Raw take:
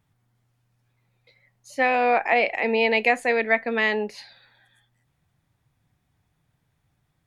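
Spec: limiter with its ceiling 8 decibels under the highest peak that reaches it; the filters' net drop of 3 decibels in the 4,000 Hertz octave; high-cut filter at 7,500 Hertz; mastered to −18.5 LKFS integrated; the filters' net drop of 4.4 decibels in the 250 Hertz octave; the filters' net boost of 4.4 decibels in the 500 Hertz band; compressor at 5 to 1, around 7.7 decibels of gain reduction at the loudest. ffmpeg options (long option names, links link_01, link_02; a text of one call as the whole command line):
ffmpeg -i in.wav -af "lowpass=7500,equalizer=frequency=250:width_type=o:gain=-6,equalizer=frequency=500:width_type=o:gain=6.5,equalizer=frequency=4000:width_type=o:gain=-4.5,acompressor=threshold=-22dB:ratio=5,volume=11dB,alimiter=limit=-9.5dB:level=0:latency=1" out.wav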